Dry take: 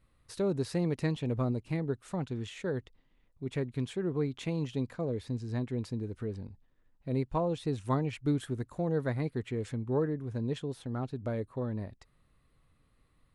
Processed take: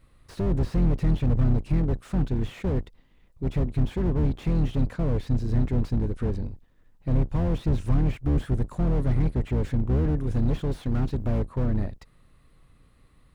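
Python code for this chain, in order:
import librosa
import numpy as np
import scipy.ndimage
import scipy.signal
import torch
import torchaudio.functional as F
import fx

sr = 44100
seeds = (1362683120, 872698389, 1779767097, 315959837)

y = fx.octave_divider(x, sr, octaves=2, level_db=1.0)
y = fx.high_shelf(y, sr, hz=2200.0, db=8.5, at=(10.16, 11.39))
y = fx.slew_limit(y, sr, full_power_hz=6.5)
y = y * 10.0 ** (8.5 / 20.0)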